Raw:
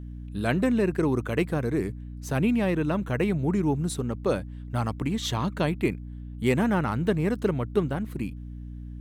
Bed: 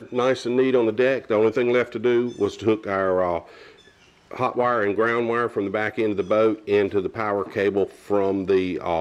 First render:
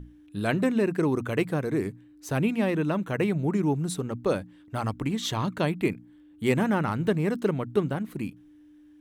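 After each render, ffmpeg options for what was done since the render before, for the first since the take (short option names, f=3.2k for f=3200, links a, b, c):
-af "bandreject=f=60:t=h:w=6,bandreject=f=120:t=h:w=6,bandreject=f=180:t=h:w=6,bandreject=f=240:t=h:w=6"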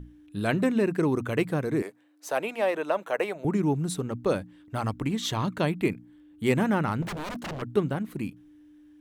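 -filter_complex "[0:a]asettb=1/sr,asplit=3[a][b][c];[a]atrim=end=1.824[d];[b]atrim=start=1.82:end=3.45,asetpts=PTS-STARTPTS,afade=t=in:d=0.004:c=qsin,afade=t=out:st=1.626:d=0.004:c=qsin,highpass=f=600:t=q:w=2[e];[c]atrim=start=3.446[f];[d][e]acrossfade=d=0.004:c1=hsin:c2=qsin[g];[g][f]acrossfade=d=0.004:c1=qsin:c2=hsin,asettb=1/sr,asplit=3[h][i][j];[h]atrim=end=7.024[k];[i]atrim=start=7.02:end=7.62,asetpts=PTS-STARTPTS,afade=t=in:d=0.004:c=qsin,afade=t=out:st=0.596:d=0.004:c=qsin,aeval=exprs='0.0335*(abs(mod(val(0)/0.0335+3,4)-2)-1)':c=same[l];[j]atrim=start=7.616[m];[k][l]acrossfade=d=0.004:c1=hsin:c2=qsin[n];[n][m]acrossfade=d=0.004:c1=qsin:c2=hsin"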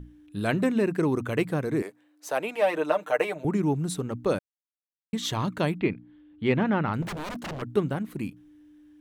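-filter_complex "[0:a]asettb=1/sr,asplit=3[a][b][c];[a]atrim=end=2.554[d];[b]atrim=start=2.55:end=3.43,asetpts=PTS-STARTPTS,afade=t=in:d=0.004:c=qsin,afade=t=out:st=0.876:d=0.004:c=qsin,aecho=1:1:6.6:0.76,atrim=end_sample=38808[e];[c]atrim=start=3.426[f];[d][e]acrossfade=d=0.004:c1=hsin:c2=qsin[g];[g][f]acrossfade=d=0.004:c1=qsin:c2=hsin,asettb=1/sr,asplit=3[h][i][j];[h]atrim=end=5.784[k];[i]atrim=start=5.78:end=6.94,asetpts=PTS-STARTPTS,afade=t=in:d=0.004:c=qsin,afade=t=out:st=1.156:d=0.004:c=qsin,lowpass=f=4.1k:w=0.5412,lowpass=f=4.1k:w=1.3066[l];[j]atrim=start=6.936[m];[k][l]acrossfade=d=0.004:c1=hsin:c2=qsin[n];[n][m]acrossfade=d=0.004:c1=qsin:c2=hsin,asplit=3[o][p][q];[o]atrim=end=4.39,asetpts=PTS-STARTPTS,afade=t=out:st=4.386:d=0.004:c=hsin[r];[p]atrim=start=4.39:end=5.13,asetpts=PTS-STARTPTS,volume=0[s];[q]atrim=start=5.13,asetpts=PTS-STARTPTS,afade=t=in:d=0.004:c=hsin[t];[r][s][t]concat=n=3:v=0:a=1"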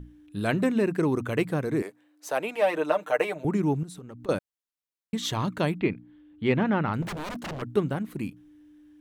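-filter_complex "[0:a]asettb=1/sr,asplit=3[a][b][c];[a]atrim=end=3.834[d];[b]atrim=start=3.83:end=4.29,asetpts=PTS-STARTPTS,afade=t=in:d=0.004:c=qsin,afade=t=out:st=0.456:d=0.004:c=qsin,acompressor=threshold=-38dB:ratio=16:attack=3.2:release=140:knee=1:detection=peak[e];[c]atrim=start=4.286[f];[d][e]acrossfade=d=0.004:c1=hsin:c2=qsin[g];[g][f]acrossfade=d=0.004:c1=qsin:c2=hsin"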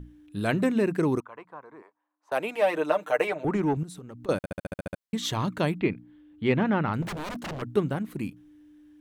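-filter_complex "[0:a]asettb=1/sr,asplit=3[a][b][c];[a]atrim=end=1.204[d];[b]atrim=start=1.2:end=2.32,asetpts=PTS-STARTPTS,afade=t=in:d=0.004:c=qsin,afade=t=out:st=1.116:d=0.004:c=qsin,bandpass=f=1k:t=q:w=5.2[e];[c]atrim=start=2.316[f];[d][e]acrossfade=d=0.004:c1=hsin:c2=qsin[g];[g][f]acrossfade=d=0.004:c1=qsin:c2=hsin,asettb=1/sr,asplit=3[h][i][j];[h]atrim=end=3.274[k];[i]atrim=start=3.27:end=3.77,asetpts=PTS-STARTPTS,afade=t=in:d=0.004:c=qsin,afade=t=out:st=0.496:d=0.004:c=qsin,asplit=2[l][m];[m]highpass=f=720:p=1,volume=13dB,asoftclip=type=tanh:threshold=-15.5dB[n];[l][n]amix=inputs=2:normalize=0,lowpass=f=2k:p=1,volume=-6dB[o];[j]atrim=start=3.766[p];[k][o]acrossfade=d=0.004:c1=hsin:c2=qsin[q];[q][p]acrossfade=d=0.004:c1=qsin:c2=hsin,asplit=10[r][s][t][u][v][w][x][y][z][aa];[r]atrim=end=4.442[ab];[s]atrim=start=4.368:end=4.442[ac];[t]atrim=start=4.368:end=4.442[ad];[u]atrim=start=4.368:end=4.442[ae];[v]atrim=start=4.368:end=4.442[af];[w]atrim=start=4.368:end=4.442[ag];[x]atrim=start=4.368:end=4.442[ah];[y]atrim=start=4.368:end=4.442[ai];[z]atrim=start=4.368:end=4.442[aj];[aa]atrim=start=4.998[ak];[ab][ac]acrossfade=d=0.004:c1=hsin:c2=hsin[al];[al][ad]acrossfade=d=0.004:c1=hsin:c2=hsin[am];[am][ae]acrossfade=d=0.004:c1=hsin:c2=hsin[an];[an][af]acrossfade=d=0.004:c1=hsin:c2=hsin[ao];[ao][ag]acrossfade=d=0.004:c1=hsin:c2=hsin[ap];[ap][ah]acrossfade=d=0.004:c1=hsin:c2=hsin[aq];[aq][ai]acrossfade=d=0.004:c1=hsin:c2=hsin[ar];[ar][aj]acrossfade=d=0.004:c1=hsin:c2=hsin[as];[as][ak]acrossfade=d=0.004:c1=hsin:c2=hsin"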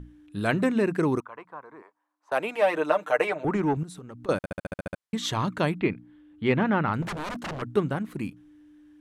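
-af "lowpass=12k,equalizer=f=1.3k:w=0.98:g=3.5"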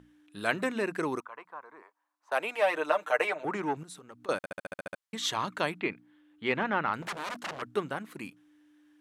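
-af "highpass=f=780:p=1"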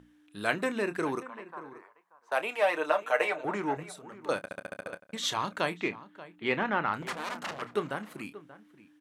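-filter_complex "[0:a]asplit=2[a][b];[b]adelay=29,volume=-12.5dB[c];[a][c]amix=inputs=2:normalize=0,asplit=2[d][e];[e]adelay=583.1,volume=-16dB,highshelf=f=4k:g=-13.1[f];[d][f]amix=inputs=2:normalize=0"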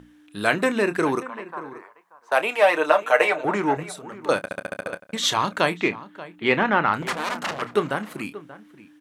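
-af "volume=9dB,alimiter=limit=-3dB:level=0:latency=1"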